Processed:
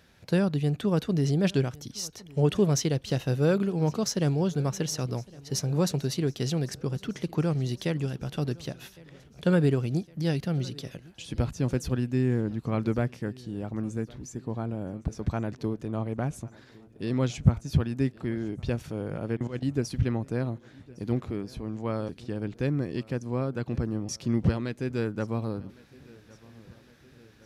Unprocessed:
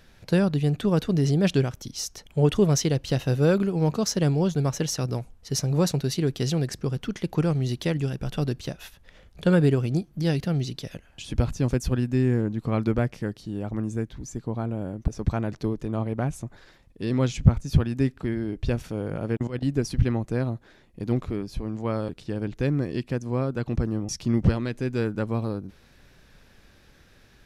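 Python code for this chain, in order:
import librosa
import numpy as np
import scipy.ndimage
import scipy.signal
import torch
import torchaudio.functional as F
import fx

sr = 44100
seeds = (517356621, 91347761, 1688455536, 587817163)

y = scipy.signal.sosfilt(scipy.signal.butter(2, 67.0, 'highpass', fs=sr, output='sos'), x)
y = fx.echo_feedback(y, sr, ms=1110, feedback_pct=60, wet_db=-23.0)
y = F.gain(torch.from_numpy(y), -3.0).numpy()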